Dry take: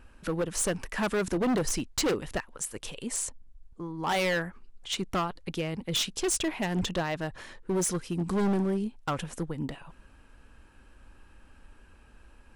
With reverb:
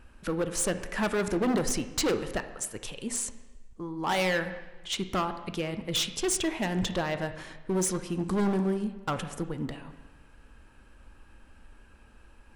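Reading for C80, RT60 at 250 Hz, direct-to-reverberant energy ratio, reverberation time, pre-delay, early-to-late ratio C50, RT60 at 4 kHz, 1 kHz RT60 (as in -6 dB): 12.5 dB, 1.1 s, 9.0 dB, 1.2 s, 5 ms, 11.0 dB, 1.1 s, 1.2 s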